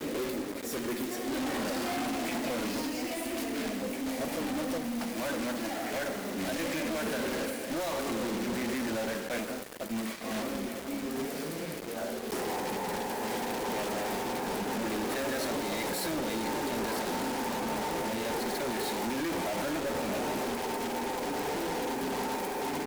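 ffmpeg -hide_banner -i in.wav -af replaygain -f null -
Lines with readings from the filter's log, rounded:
track_gain = +16.7 dB
track_peak = 0.035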